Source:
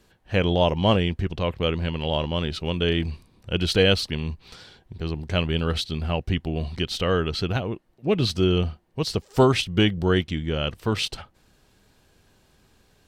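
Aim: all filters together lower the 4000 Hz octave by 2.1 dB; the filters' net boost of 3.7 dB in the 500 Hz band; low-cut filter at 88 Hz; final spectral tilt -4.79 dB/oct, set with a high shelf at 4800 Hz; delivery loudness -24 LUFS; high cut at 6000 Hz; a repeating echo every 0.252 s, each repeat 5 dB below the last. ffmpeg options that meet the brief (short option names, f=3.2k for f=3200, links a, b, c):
-af "highpass=88,lowpass=6k,equalizer=f=500:t=o:g=4.5,equalizer=f=4k:t=o:g=-6.5,highshelf=f=4.8k:g=9,aecho=1:1:252|504|756|1008|1260|1512|1764:0.562|0.315|0.176|0.0988|0.0553|0.031|0.0173,volume=-2dB"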